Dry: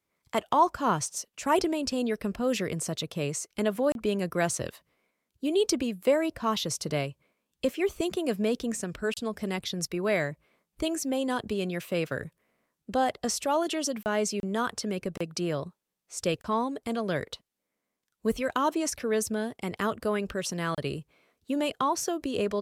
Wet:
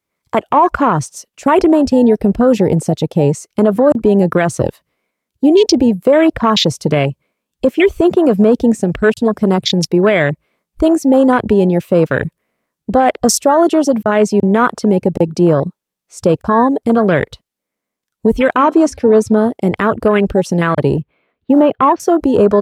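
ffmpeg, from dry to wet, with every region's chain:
-filter_complex "[0:a]asettb=1/sr,asplit=3[a][b][c];[a]atrim=end=7.664[d];[b]atrim=start=7.66:end=8.52,asetpts=PTS-STARTPTS,afade=t=in:d=0.004:c=qsin,afade=t=out:st=0.856:d=0.004:c=qsin,acrossover=split=3100[e][f];[f]acompressor=threshold=-57dB:ratio=4:attack=1:release=60[g];[e][g]amix=inputs=2:normalize=0,highshelf=f=2.8k:g=11.5[h];[c]atrim=start=8.516[i];[d][h]acrossfade=d=0.004:c1=hsin:c2=qsin[j];[j][i]acrossfade=d=0.004:c1=qsin:c2=hsin,asettb=1/sr,asplit=3[k][l][m];[k]atrim=end=18.564[n];[l]atrim=start=18.56:end=19.38,asetpts=PTS-STARTPTS,afade=t=in:d=0.004:c=qsin,afade=t=out:st=0.816:d=0.004:c=qsin,lowpass=9.1k,bandreject=f=265.4:t=h:w=4,bandreject=f=530.8:t=h:w=4,bandreject=f=796.2:t=h:w=4,bandreject=f=1.0616k:t=h:w=4,bandreject=f=1.327k:t=h:w=4,bandreject=f=1.5924k:t=h:w=4,bandreject=f=1.8578k:t=h:w=4,bandreject=f=2.1232k:t=h:w=4,bandreject=f=2.3886k:t=h:w=4,bandreject=f=2.654k:t=h:w=4,bandreject=f=2.9194k:t=h:w=4,bandreject=f=3.1848k:t=h:w=4,bandreject=f=3.4502k:t=h:w=4,bandreject=f=3.7156k:t=h:w=4,bandreject=f=3.981k:t=h:w=4,bandreject=f=4.2464k:t=h:w=4,bandreject=f=4.5118k:t=h:w=4,bandreject=f=4.7772k:t=h:w=4,bandreject=f=5.0426k:t=h:w=4[o];[m]atrim=start=19.376[p];[n][o]acrossfade=d=0.004:c1=hsin:c2=qsin[q];[q][p]acrossfade=d=0.004:c1=qsin:c2=hsin,asettb=1/sr,asplit=3[r][s][t];[r]atrim=end=20.964[u];[s]atrim=start=20.96:end=22,asetpts=PTS-STARTPTS,afade=t=in:d=0.004:c=qsin,afade=t=out:st=1.036:d=0.004:c=qsin,lowpass=f=3.2k:w=0.5412,lowpass=f=3.2k:w=1.3066,acrusher=bits=8:mode=log:mix=0:aa=0.000001[v];[t]atrim=start=21.996[w];[u][v]acrossfade=d=0.004:c1=hsin:c2=qsin[x];[x][w]acrossfade=d=0.004:c1=qsin:c2=hsin,afwtdn=0.0178,alimiter=level_in=21dB:limit=-1dB:release=50:level=0:latency=1,volume=-1dB"

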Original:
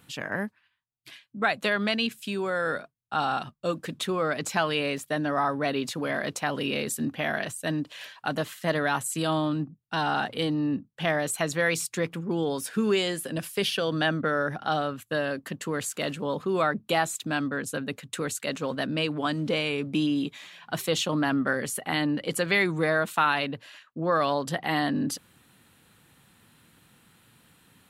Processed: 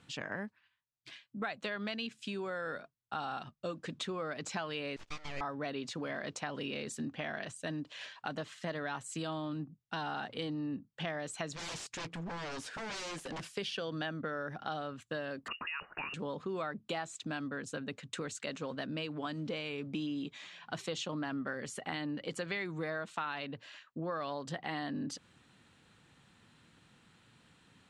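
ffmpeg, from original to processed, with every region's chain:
-filter_complex "[0:a]asettb=1/sr,asplit=3[a][b][c];[a]atrim=end=4.964[d];[b]atrim=start=4.96:end=5.41,asetpts=PTS-STARTPTS,afade=t=in:d=0.004:c=qsin,afade=t=out:st=0.446:d=0.004:c=qsin,highpass=890,aeval=exprs='abs(val(0))':c=same[e];[c]atrim=start=5.406[f];[d][e]acrossfade=d=0.004:c1=hsin:c2=qsin[g];[g][f]acrossfade=d=0.004:c1=qsin:c2=hsin,asettb=1/sr,asplit=3[h][i][j];[h]atrim=end=11.554[k];[i]atrim=start=11.55:end=13.45,asetpts=PTS-STARTPTS,afade=t=in:d=0.004:c=qsin,afade=t=out:st=1.896:d=0.004:c=qsin,highshelf=f=12k:g=7.5,aeval=exprs='0.0282*(abs(mod(val(0)/0.0282+3,4)-2)-1)':c=same[l];[j]atrim=start=13.446[m];[k][l]acrossfade=d=0.004:c1=hsin:c2=qsin[n];[n][m]acrossfade=d=0.004:c1=qsin:c2=hsin,asettb=1/sr,asplit=3[o][p][q];[o]atrim=end=15.484[r];[p]atrim=start=15.48:end=16.14,asetpts=PTS-STARTPTS,afade=t=in:d=0.004:c=qsin,afade=t=out:st=0.656:d=0.004:c=qsin,equalizer=f=1.7k:w=0.54:g=9,acompressor=threshold=-29dB:ratio=3:attack=3.2:release=140:knee=1:detection=peak,lowpass=f=2.6k:t=q:w=0.5098,lowpass=f=2.6k:t=q:w=0.6013,lowpass=f=2.6k:t=q:w=0.9,lowpass=f=2.6k:t=q:w=2.563,afreqshift=-3000[s];[q]atrim=start=16.136[t];[r][s]acrossfade=d=0.004:c1=hsin:c2=qsin[u];[u][t]acrossfade=d=0.004:c1=qsin:c2=hsin,lowpass=f=7.5k:w=0.5412,lowpass=f=7.5k:w=1.3066,acompressor=threshold=-33dB:ratio=3,volume=-4dB"

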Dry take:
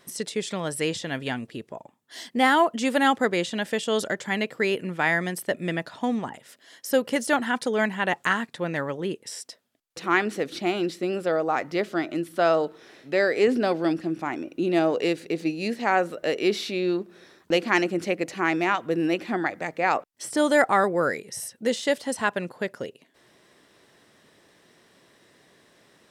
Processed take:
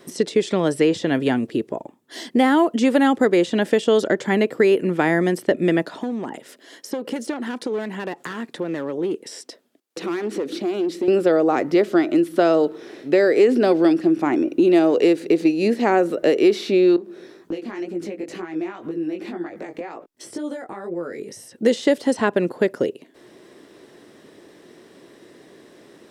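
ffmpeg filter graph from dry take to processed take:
-filter_complex "[0:a]asettb=1/sr,asplit=3[a][b][c];[a]atrim=end=5.854[d];[b]atrim=start=5.85:end=11.08,asetpts=PTS-STARTPTS,afade=t=in:d=0.004:c=qsin,afade=t=out:st=5.226:d=0.004:c=qsin,aeval=exprs='clip(val(0),-1,0.0501)':c=same,acompressor=threshold=-35dB:ratio=4:attack=3.2:release=140:knee=1:detection=peak,highpass=170[e];[c]atrim=start=11.076[f];[d][e]acrossfade=d=0.004:c1=hsin:c2=qsin[g];[g][f]acrossfade=d=0.004:c1=qsin:c2=hsin,asettb=1/sr,asplit=3[h][i][j];[h]atrim=end=16.964[k];[i]atrim=start=16.96:end=21.52,asetpts=PTS-STARTPTS,afade=t=in:d=0.004:c=qsin,afade=t=out:st=4.556:d=0.004:c=qsin,acompressor=threshold=-35dB:ratio=12:attack=3.2:release=140:knee=1:detection=peak,flanger=delay=17:depth=4.2:speed=2[l];[j]atrim=start=21.516[m];[k][l]acrossfade=d=0.004:c1=hsin:c2=qsin[n];[n][m]acrossfade=d=0.004:c1=qsin:c2=hsin,equalizer=f=340:w=0.98:g=12,acrossover=split=570|1900|6700[o][p][q][r];[o]acompressor=threshold=-21dB:ratio=4[s];[p]acompressor=threshold=-26dB:ratio=4[t];[q]acompressor=threshold=-36dB:ratio=4[u];[r]acompressor=threshold=-51dB:ratio=4[v];[s][t][u][v]amix=inputs=4:normalize=0,volume=4.5dB"

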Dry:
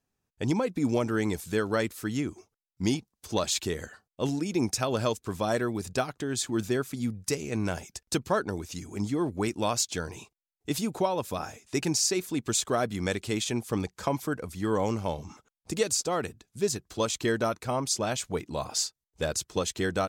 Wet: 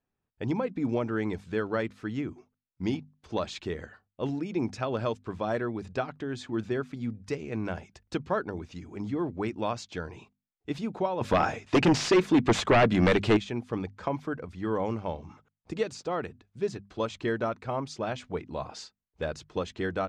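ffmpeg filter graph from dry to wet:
-filter_complex "[0:a]asettb=1/sr,asplit=3[a][b][c];[a]atrim=end=11.214[d];[b]atrim=start=11.21:end=13.37,asetpts=PTS-STARTPTS,afade=t=in:d=0.004:c=qsin,afade=t=out:st=2.156:d=0.004:c=qsin,lowshelf=f=64:g=-9.5,aeval=exprs='0.211*sin(PI/2*3.55*val(0)/0.211)':c=same[e];[c]atrim=start=13.366[f];[d][e]acrossfade=d=0.004:c1=hsin:c2=qsin[g];[g][f]acrossfade=d=0.004:c1=qsin:c2=hsin,lowpass=2.7k,bandreject=f=50:t=h:w=6,bandreject=f=100:t=h:w=6,bandreject=f=150:t=h:w=6,bandreject=f=200:t=h:w=6,bandreject=f=250:t=h:w=6,volume=-2dB"

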